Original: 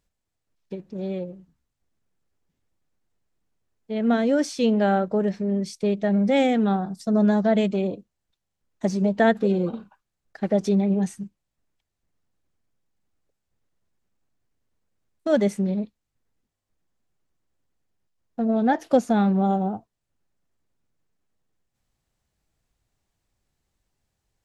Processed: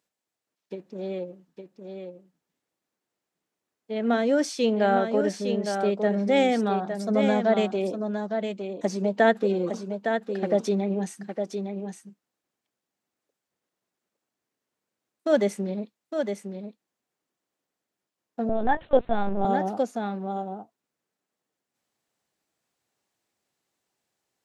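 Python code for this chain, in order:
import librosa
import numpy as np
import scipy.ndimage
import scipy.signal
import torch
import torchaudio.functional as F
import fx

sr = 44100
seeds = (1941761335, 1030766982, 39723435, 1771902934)

p1 = scipy.signal.sosfilt(scipy.signal.butter(2, 270.0, 'highpass', fs=sr, output='sos'), x)
p2 = p1 + fx.echo_single(p1, sr, ms=860, db=-6.5, dry=0)
y = fx.lpc_vocoder(p2, sr, seeds[0], excitation='pitch_kept', order=10, at=(18.49, 19.45))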